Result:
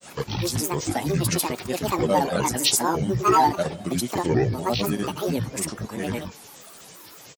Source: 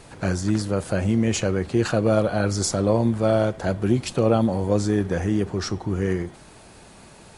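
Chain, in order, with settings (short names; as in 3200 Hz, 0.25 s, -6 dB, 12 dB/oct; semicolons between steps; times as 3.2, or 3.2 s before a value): RIAA curve recording; small resonant body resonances 210/660/3400 Hz, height 10 dB; grains, grains 27/s, pitch spread up and down by 12 st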